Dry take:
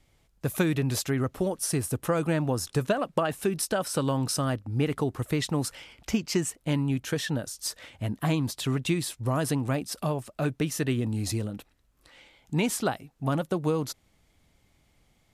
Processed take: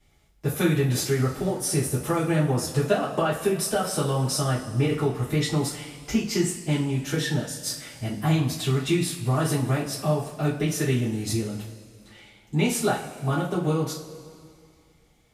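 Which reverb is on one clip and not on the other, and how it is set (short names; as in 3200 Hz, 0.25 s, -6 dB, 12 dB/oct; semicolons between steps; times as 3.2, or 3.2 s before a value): two-slope reverb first 0.32 s, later 2.3 s, from -18 dB, DRR -8.5 dB; gain -6 dB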